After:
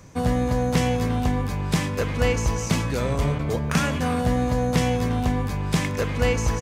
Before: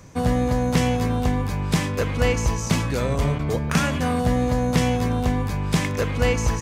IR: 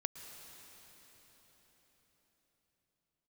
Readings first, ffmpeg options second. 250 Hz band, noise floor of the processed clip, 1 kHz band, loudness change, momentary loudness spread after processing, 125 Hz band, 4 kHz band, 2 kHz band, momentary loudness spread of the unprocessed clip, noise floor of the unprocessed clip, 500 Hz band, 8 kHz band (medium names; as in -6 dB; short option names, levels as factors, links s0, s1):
-1.5 dB, -28 dBFS, -1.0 dB, -1.0 dB, 3 LU, -1.0 dB, -1.0 dB, -1.0 dB, 3 LU, -27 dBFS, -1.0 dB, -1.5 dB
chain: -filter_complex "[0:a]asplit=2[s0][s1];[s1]adelay=350,highpass=300,lowpass=3400,asoftclip=type=hard:threshold=0.141,volume=0.2[s2];[s0][s2]amix=inputs=2:normalize=0,asplit=2[s3][s4];[1:a]atrim=start_sample=2205,afade=t=out:st=0.39:d=0.01,atrim=end_sample=17640[s5];[s4][s5]afir=irnorm=-1:irlink=0,volume=0.355[s6];[s3][s6]amix=inputs=2:normalize=0,volume=0.668"